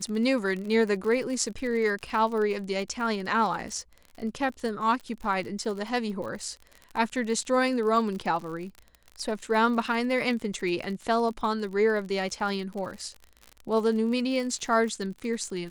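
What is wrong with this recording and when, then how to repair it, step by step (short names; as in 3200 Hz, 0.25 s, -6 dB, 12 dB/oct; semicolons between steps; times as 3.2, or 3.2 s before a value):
crackle 47/s -34 dBFS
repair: de-click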